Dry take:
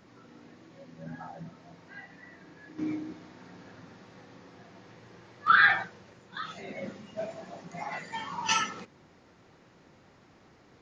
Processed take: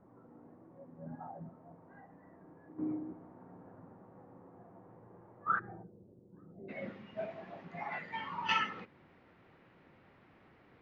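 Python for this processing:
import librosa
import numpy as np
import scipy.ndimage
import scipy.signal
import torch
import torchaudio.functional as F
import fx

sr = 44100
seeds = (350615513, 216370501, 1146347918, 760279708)

y = fx.ladder_lowpass(x, sr, hz=fx.steps((0.0, 1200.0), (5.58, 500.0), (6.68, 3400.0)), resonance_pct=25)
y = y * 10.0 ** (1.5 / 20.0)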